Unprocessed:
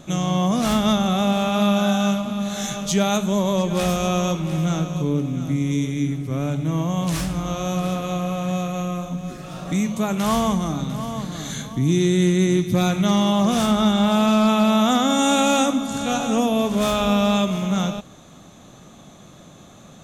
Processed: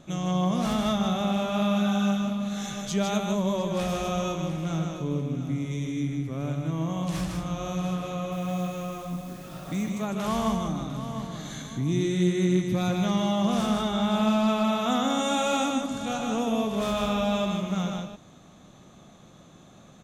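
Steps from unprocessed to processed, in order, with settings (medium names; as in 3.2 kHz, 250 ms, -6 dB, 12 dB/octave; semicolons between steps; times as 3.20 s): treble shelf 6.9 kHz -6.5 dB; 8.32–9.90 s: word length cut 8-bit, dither triangular; delay 154 ms -4 dB; trim -7.5 dB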